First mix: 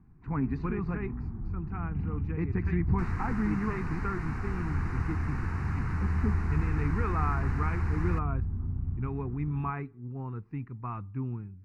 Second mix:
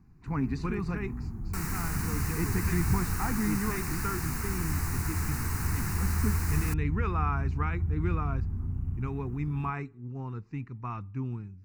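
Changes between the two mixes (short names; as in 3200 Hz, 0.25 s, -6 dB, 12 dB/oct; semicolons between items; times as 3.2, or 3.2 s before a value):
second sound: entry -1.45 s; master: remove LPF 2000 Hz 12 dB/oct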